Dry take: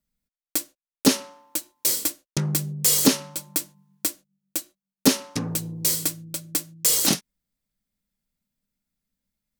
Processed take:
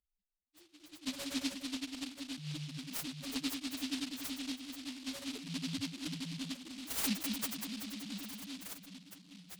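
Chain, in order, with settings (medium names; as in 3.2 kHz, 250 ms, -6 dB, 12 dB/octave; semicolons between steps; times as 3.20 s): echo with a slow build-up 95 ms, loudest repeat 5, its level -16 dB; slow attack 323 ms; dynamic bell 150 Hz, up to -6 dB, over -50 dBFS, Q 6.8; echo whose repeats swap between lows and highs 204 ms, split 2.4 kHz, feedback 88%, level -8 dB; rotary cabinet horn 8 Hz, later 0.7 Hz, at 3.17 s; loudest bins only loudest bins 1; bass shelf 370 Hz -12 dB; delay time shaken by noise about 3.5 kHz, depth 0.36 ms; trim +14 dB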